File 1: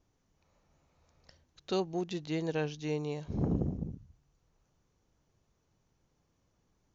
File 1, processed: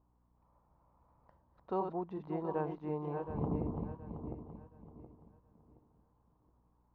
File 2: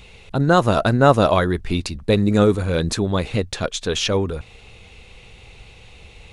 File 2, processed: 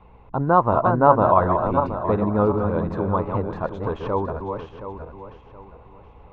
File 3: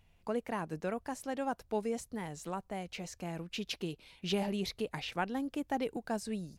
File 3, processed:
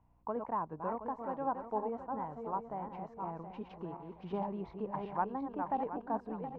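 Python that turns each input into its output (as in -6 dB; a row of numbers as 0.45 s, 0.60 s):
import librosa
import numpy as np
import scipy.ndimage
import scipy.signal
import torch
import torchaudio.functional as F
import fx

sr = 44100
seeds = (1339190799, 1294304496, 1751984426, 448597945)

y = fx.reverse_delay_fb(x, sr, ms=361, feedback_pct=54, wet_db=-5.5)
y = fx.lowpass_res(y, sr, hz=1000.0, q=4.6)
y = fx.add_hum(y, sr, base_hz=60, snr_db=32)
y = y * 10.0 ** (-6.0 / 20.0)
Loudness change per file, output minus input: -4.0 LU, -2.0 LU, -1.5 LU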